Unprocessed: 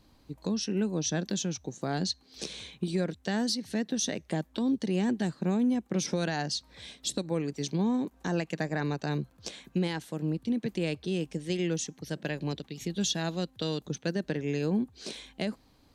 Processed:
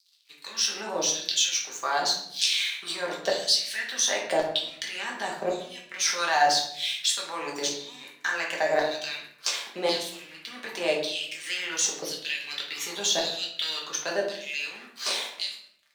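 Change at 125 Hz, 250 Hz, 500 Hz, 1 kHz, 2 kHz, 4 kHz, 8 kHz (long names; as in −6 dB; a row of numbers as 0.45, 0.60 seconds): −19.0, −12.5, +3.5, +10.5, +10.0, +11.0, +9.5 decibels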